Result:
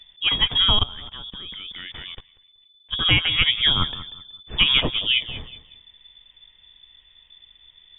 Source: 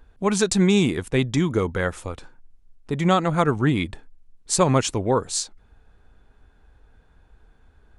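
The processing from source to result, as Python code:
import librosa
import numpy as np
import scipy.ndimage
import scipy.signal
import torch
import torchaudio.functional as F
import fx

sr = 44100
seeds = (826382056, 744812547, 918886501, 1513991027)

y = fx.doubler(x, sr, ms=14.0, db=-13)
y = fx.freq_invert(y, sr, carrier_hz=3500)
y = fx.tilt_eq(y, sr, slope=-3.0)
y = fx.echo_feedback(y, sr, ms=188, feedback_pct=27, wet_db=-15)
y = fx.level_steps(y, sr, step_db=20, at=(0.71, 2.92), fade=0.02)
y = y * 10.0 ** (4.0 / 20.0)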